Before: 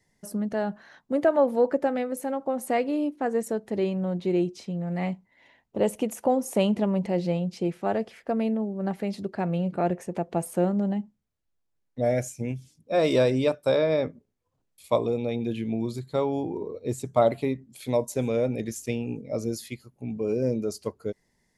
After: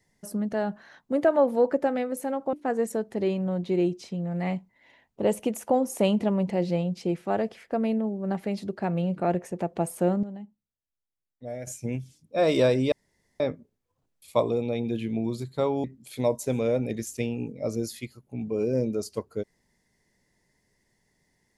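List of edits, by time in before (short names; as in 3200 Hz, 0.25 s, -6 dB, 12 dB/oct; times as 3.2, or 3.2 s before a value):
2.53–3.09 cut
10.79–12.23 gain -12 dB
13.48–13.96 room tone
16.4–17.53 cut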